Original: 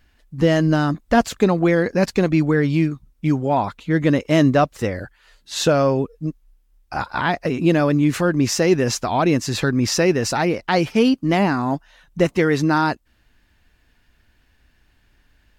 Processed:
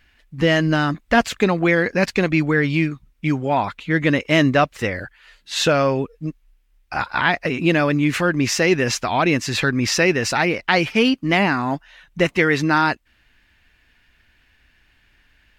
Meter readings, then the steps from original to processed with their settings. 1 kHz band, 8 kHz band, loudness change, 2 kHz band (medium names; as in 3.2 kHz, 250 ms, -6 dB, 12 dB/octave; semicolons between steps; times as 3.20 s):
+0.5 dB, 0.0 dB, 0.0 dB, +6.0 dB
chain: peaking EQ 2.3 kHz +10 dB 1.6 oct; trim -2 dB